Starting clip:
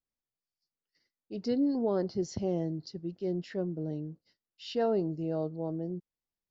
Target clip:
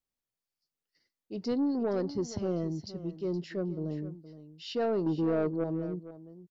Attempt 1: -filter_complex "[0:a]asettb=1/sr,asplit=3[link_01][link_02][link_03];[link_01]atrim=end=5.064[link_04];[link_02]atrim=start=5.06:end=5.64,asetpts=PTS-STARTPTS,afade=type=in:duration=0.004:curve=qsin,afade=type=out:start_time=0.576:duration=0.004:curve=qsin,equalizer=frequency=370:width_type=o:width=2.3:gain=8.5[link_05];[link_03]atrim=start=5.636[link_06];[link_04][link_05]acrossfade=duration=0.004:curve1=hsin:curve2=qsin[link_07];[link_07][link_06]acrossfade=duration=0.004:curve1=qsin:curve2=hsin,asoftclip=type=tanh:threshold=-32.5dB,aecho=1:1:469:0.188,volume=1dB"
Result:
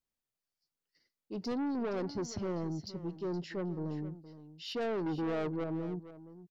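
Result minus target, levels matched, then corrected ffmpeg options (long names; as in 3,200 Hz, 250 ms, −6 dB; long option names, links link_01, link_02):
soft clipping: distortion +7 dB
-filter_complex "[0:a]asettb=1/sr,asplit=3[link_01][link_02][link_03];[link_01]atrim=end=5.064[link_04];[link_02]atrim=start=5.06:end=5.64,asetpts=PTS-STARTPTS,afade=type=in:duration=0.004:curve=qsin,afade=type=out:start_time=0.576:duration=0.004:curve=qsin,equalizer=frequency=370:width_type=o:width=2.3:gain=8.5[link_05];[link_03]atrim=start=5.636[link_06];[link_04][link_05]acrossfade=duration=0.004:curve1=hsin:curve2=qsin[link_07];[link_07][link_06]acrossfade=duration=0.004:curve1=qsin:curve2=hsin,asoftclip=type=tanh:threshold=-23.5dB,aecho=1:1:469:0.188,volume=1dB"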